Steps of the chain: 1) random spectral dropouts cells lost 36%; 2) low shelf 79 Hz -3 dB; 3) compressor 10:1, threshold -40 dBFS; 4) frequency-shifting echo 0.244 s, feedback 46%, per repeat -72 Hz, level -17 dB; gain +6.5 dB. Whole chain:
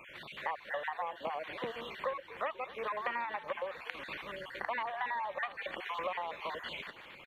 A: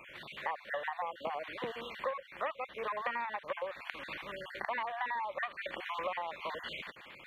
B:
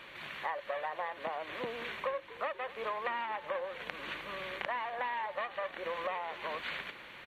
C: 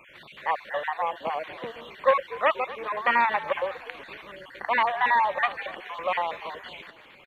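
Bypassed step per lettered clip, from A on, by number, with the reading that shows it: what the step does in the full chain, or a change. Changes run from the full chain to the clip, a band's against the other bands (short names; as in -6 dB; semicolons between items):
4, echo-to-direct -16.0 dB to none; 1, momentary loudness spread change -2 LU; 3, mean gain reduction 6.0 dB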